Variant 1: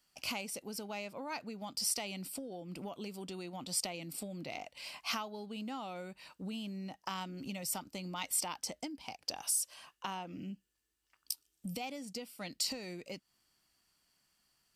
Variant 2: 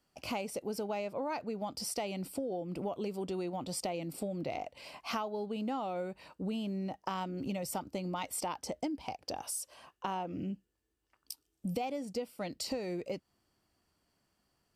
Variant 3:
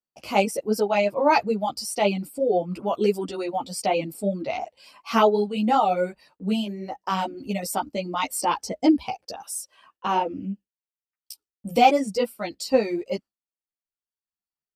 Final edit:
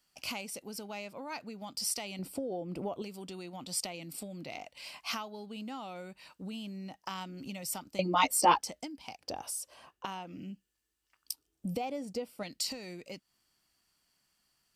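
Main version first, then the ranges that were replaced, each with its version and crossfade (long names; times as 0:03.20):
1
0:02.19–0:03.02: punch in from 2
0:07.99–0:08.62: punch in from 3
0:09.24–0:10.05: punch in from 2
0:11.32–0:12.43: punch in from 2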